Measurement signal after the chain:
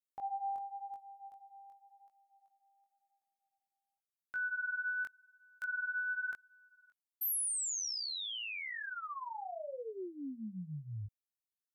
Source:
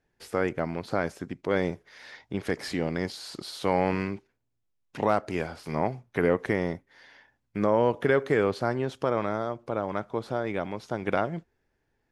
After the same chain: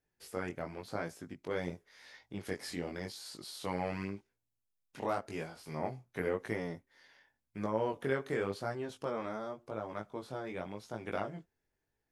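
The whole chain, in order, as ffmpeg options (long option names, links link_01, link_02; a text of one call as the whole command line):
ffmpeg -i in.wav -af "highshelf=frequency=6500:gain=11.5,flanger=delay=18:depth=5:speed=0.91,volume=-7.5dB" -ar 44100 -c:a ac3 -b:a 320k out.ac3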